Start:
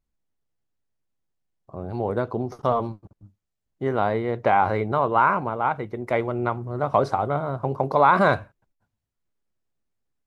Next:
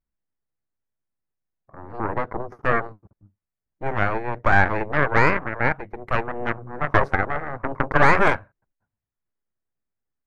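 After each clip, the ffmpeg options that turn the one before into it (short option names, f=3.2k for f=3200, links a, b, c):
-af "aeval=exprs='0.562*(cos(1*acos(clip(val(0)/0.562,-1,1)))-cos(1*PI/2))+0.282*(cos(4*acos(clip(val(0)/0.562,-1,1)))-cos(4*PI/2))+0.02*(cos(7*acos(clip(val(0)/0.562,-1,1)))-cos(7*PI/2))+0.0891*(cos(8*acos(clip(val(0)/0.562,-1,1)))-cos(8*PI/2))':c=same,highshelf=f=2.6k:t=q:w=1.5:g=-10,volume=-3dB"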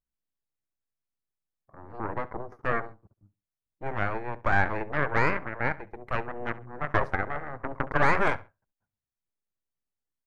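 -filter_complex "[0:a]asplit=2[a][b];[b]adelay=68,lowpass=f=3.8k:p=1,volume=-19dB,asplit=2[c][d];[d]adelay=68,lowpass=f=3.8k:p=1,volume=0.28[e];[a][c][e]amix=inputs=3:normalize=0,volume=-7dB"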